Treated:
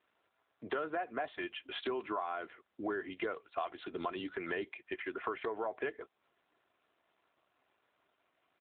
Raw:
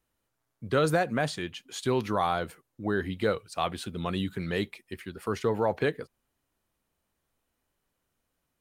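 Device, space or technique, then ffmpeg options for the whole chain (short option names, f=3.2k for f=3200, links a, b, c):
voicemail: -filter_complex "[0:a]asplit=3[a][b][c];[a]afade=t=out:st=4.85:d=0.02[d];[b]adynamicequalizer=threshold=0.00631:dfrequency=1800:dqfactor=0.98:tfrequency=1800:tqfactor=0.98:attack=5:release=100:ratio=0.375:range=1.5:mode=boostabove:tftype=bell,afade=t=in:st=4.85:d=0.02,afade=t=out:st=5.51:d=0.02[e];[c]afade=t=in:st=5.51:d=0.02[f];[d][e][f]amix=inputs=3:normalize=0,aecho=1:1:2.9:0.54,asettb=1/sr,asplit=3[g][h][i];[g]atrim=end=2.204[j];[h]atrim=start=2.2:end=2.89,asetpts=PTS-STARTPTS,afade=t=in:d=0.004:c=qsin,afade=t=out:st=0.686:d=0.004:c=qsin,equalizer=f=720:t=o:w=1.5:g=-3[k];[i]atrim=start=2.886[l];[j][k]acrossfade=d=0.004:c1=hsin:c2=qsin[m];[m][l]acrossfade=d=0.004:c1=qsin:c2=hsin,highpass=430,lowpass=2.7k,acompressor=threshold=-43dB:ratio=6,volume=8.5dB" -ar 8000 -c:a libopencore_amrnb -b:a 7950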